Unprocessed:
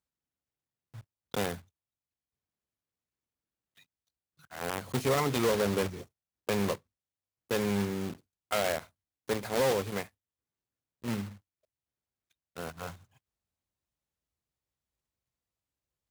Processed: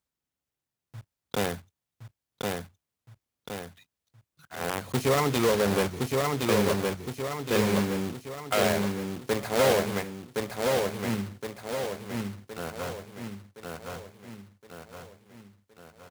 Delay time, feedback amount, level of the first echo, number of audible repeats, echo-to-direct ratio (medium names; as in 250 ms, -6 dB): 1067 ms, 50%, -3.0 dB, 6, -2.0 dB